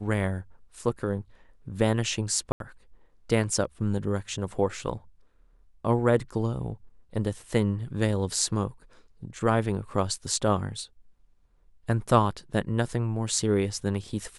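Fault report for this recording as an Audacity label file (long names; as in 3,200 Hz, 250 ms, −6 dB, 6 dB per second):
2.520000	2.600000	drop-out 82 ms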